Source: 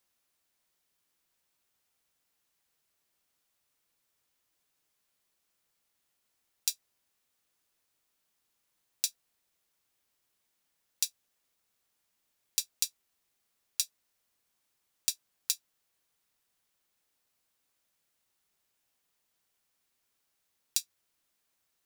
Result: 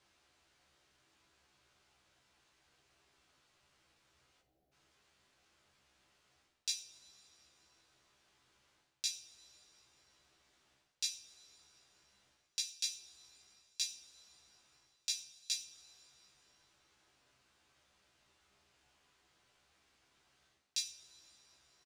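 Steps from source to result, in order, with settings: spectral selection erased 4.41–4.72 s, 820–11000 Hz; dynamic bell 1.3 kHz, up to -6 dB, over -59 dBFS, Q 1; reverse; compression 6:1, threshold -40 dBFS, peak gain reduction 16 dB; reverse; distance through air 100 m; doubling 15 ms -5 dB; two-slope reverb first 0.4 s, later 3.1 s, from -20 dB, DRR 3.5 dB; trim +9.5 dB

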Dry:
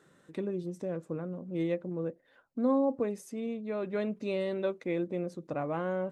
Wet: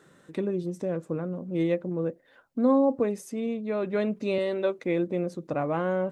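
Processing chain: 4.38–4.79 s: high-pass 250 Hz; trim +5.5 dB

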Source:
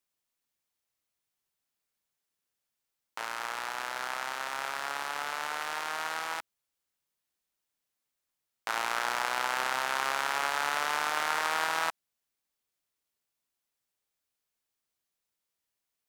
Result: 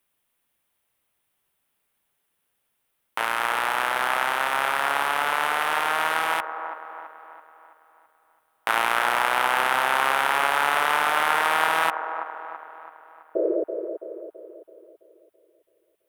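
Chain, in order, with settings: high-order bell 5.6 kHz -10 dB 1.1 oct; in parallel at +2.5 dB: gain riding; on the sum: painted sound noise, 13.35–13.64 s, 320–660 Hz -25 dBFS; feedback echo behind a band-pass 331 ms, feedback 49%, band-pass 670 Hz, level -6.5 dB; trim +2 dB

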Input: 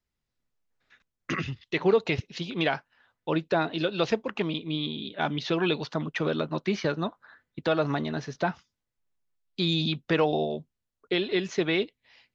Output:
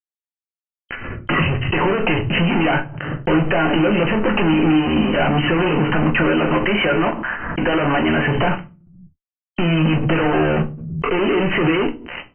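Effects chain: 6.23–8.28 s: high-pass 640 Hz 6 dB/octave; compression 6:1, threshold -31 dBFS, peak gain reduction 13.5 dB; waveshaping leveller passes 1; fuzz box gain 56 dB, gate -53 dBFS; brick-wall FIR low-pass 3.1 kHz; simulated room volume 120 m³, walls furnished, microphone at 0.9 m; swell ahead of each attack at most 43 dB/s; trim -4.5 dB

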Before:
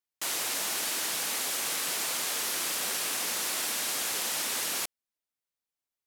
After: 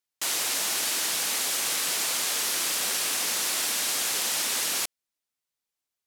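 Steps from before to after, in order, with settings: peaking EQ 5.5 kHz +3.5 dB 2.6 oct; trim +1.5 dB

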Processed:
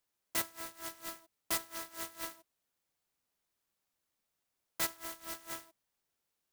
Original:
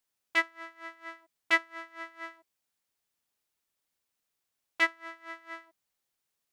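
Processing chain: peak limiter -20.5 dBFS, peak gain reduction 10.5 dB; sampling jitter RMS 0.12 ms

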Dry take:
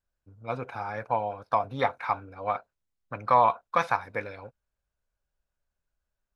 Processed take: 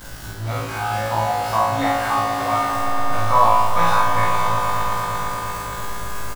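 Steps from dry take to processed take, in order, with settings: jump at every zero crossing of -31 dBFS; peaking EQ 440 Hz -13.5 dB 0.24 oct; band-stop 2.4 kHz, Q 15; flutter echo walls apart 3.1 m, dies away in 0.8 s; mains buzz 50 Hz, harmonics 36, -45 dBFS -4 dB/octave; doubling 47 ms -2.5 dB; on a send: echo with a slow build-up 115 ms, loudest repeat 5, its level -11 dB; on the sum: trim -1.5 dB

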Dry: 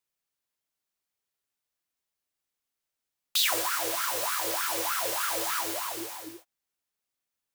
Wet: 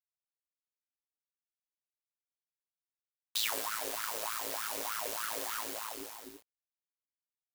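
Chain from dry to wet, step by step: ring modulator 55 Hz; companded quantiser 4-bit; trim -5 dB

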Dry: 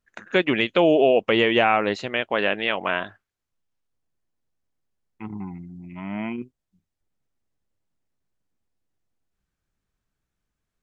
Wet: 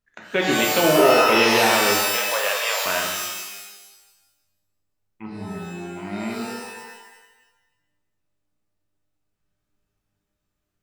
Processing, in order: 2.01–2.86 s: elliptic high-pass 480 Hz; pitch-shifted reverb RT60 1.1 s, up +12 st, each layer -2 dB, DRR -0.5 dB; trim -3 dB

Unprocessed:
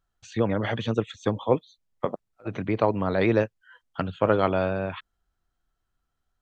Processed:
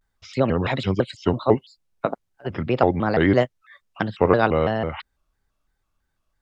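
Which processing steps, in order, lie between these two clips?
vibrato with a chosen wave square 3 Hz, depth 250 cents; trim +4 dB

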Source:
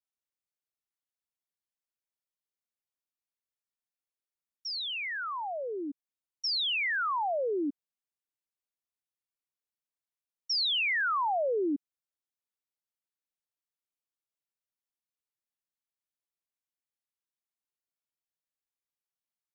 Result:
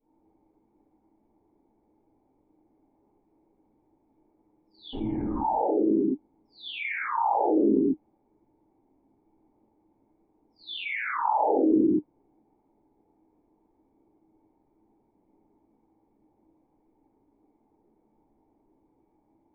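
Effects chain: 4.93–5.40 s: one-bit delta coder 16 kbps, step -53.5 dBFS; whisper effect; cascade formant filter u; reverberation, pre-delay 4 ms, DRR -16 dB; level flattener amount 70%; trim -6.5 dB

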